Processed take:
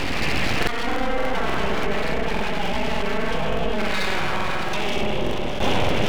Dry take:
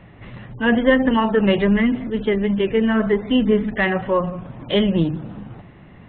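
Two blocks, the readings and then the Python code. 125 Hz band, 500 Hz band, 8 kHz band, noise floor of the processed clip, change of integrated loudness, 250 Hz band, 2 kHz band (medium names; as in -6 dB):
-3.5 dB, -5.5 dB, no reading, -23 dBFS, -5.5 dB, -10.5 dB, -0.5 dB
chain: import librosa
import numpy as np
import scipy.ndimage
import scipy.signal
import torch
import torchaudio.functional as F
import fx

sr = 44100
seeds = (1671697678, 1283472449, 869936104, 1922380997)

y = fx.env_lowpass_down(x, sr, base_hz=2100.0, full_db=-13.0)
y = fx.peak_eq(y, sr, hz=2500.0, db=13.0, octaves=0.29)
y = fx.hum_notches(y, sr, base_hz=60, count=7)
y = fx.echo_feedback(y, sr, ms=66, feedback_pct=43, wet_db=-6)
y = fx.rev_freeverb(y, sr, rt60_s=3.2, hf_ratio=1.0, predelay_ms=60, drr_db=-5.5)
y = fx.gate_flip(y, sr, shuts_db=-10.0, range_db=-29)
y = fx.rider(y, sr, range_db=3, speed_s=0.5)
y = np.abs(y)
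y = fx.buffer_crackle(y, sr, first_s=0.58, period_s=0.29, block=2048, kind='repeat')
y = fx.env_flatten(y, sr, amount_pct=70)
y = y * librosa.db_to_amplitude(8.0)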